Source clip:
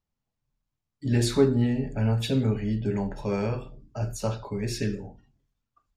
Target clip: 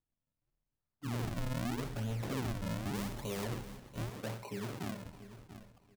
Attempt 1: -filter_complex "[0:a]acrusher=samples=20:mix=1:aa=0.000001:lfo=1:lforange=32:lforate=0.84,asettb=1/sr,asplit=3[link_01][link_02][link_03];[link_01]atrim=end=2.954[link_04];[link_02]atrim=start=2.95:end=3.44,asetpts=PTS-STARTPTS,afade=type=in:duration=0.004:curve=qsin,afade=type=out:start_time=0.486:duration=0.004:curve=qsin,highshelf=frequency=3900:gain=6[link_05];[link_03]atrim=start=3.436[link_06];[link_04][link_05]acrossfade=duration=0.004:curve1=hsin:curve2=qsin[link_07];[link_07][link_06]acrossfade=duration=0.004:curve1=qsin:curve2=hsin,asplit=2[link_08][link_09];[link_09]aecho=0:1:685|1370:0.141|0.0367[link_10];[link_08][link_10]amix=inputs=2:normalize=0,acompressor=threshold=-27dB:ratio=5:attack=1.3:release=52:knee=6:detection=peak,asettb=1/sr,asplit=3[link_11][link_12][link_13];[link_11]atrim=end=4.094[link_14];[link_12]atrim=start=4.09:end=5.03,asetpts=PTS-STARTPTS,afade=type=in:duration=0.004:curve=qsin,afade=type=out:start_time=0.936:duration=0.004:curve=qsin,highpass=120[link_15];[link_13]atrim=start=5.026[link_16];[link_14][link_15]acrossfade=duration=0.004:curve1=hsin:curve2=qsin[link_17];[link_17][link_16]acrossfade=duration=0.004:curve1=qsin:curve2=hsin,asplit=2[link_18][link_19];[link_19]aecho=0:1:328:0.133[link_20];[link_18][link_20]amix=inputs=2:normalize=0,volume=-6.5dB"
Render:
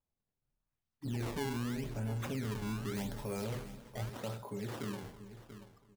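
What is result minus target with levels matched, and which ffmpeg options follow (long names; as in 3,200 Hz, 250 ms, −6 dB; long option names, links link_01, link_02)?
sample-and-hold swept by an LFO: distortion −10 dB
-filter_complex "[0:a]acrusher=samples=64:mix=1:aa=0.000001:lfo=1:lforange=102:lforate=0.84,asettb=1/sr,asplit=3[link_01][link_02][link_03];[link_01]atrim=end=2.954[link_04];[link_02]atrim=start=2.95:end=3.44,asetpts=PTS-STARTPTS,afade=type=in:duration=0.004:curve=qsin,afade=type=out:start_time=0.486:duration=0.004:curve=qsin,highshelf=frequency=3900:gain=6[link_05];[link_03]atrim=start=3.436[link_06];[link_04][link_05]acrossfade=duration=0.004:curve1=hsin:curve2=qsin[link_07];[link_07][link_06]acrossfade=duration=0.004:curve1=qsin:curve2=hsin,asplit=2[link_08][link_09];[link_09]aecho=0:1:685|1370:0.141|0.0367[link_10];[link_08][link_10]amix=inputs=2:normalize=0,acompressor=threshold=-27dB:ratio=5:attack=1.3:release=52:knee=6:detection=peak,asettb=1/sr,asplit=3[link_11][link_12][link_13];[link_11]atrim=end=4.094[link_14];[link_12]atrim=start=4.09:end=5.03,asetpts=PTS-STARTPTS,afade=type=in:duration=0.004:curve=qsin,afade=type=out:start_time=0.936:duration=0.004:curve=qsin,highpass=120[link_15];[link_13]atrim=start=5.026[link_16];[link_14][link_15]acrossfade=duration=0.004:curve1=hsin:curve2=qsin[link_17];[link_17][link_16]acrossfade=duration=0.004:curve1=qsin:curve2=hsin,asplit=2[link_18][link_19];[link_19]aecho=0:1:328:0.133[link_20];[link_18][link_20]amix=inputs=2:normalize=0,volume=-6.5dB"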